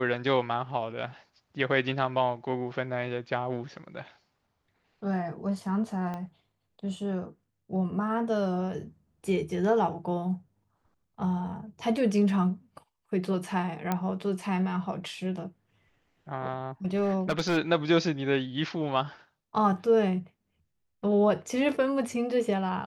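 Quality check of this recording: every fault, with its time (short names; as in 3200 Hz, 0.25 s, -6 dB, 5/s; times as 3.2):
6.14 pop -24 dBFS
13.92 pop -14 dBFS
16.95–17.58 clipped -21.5 dBFS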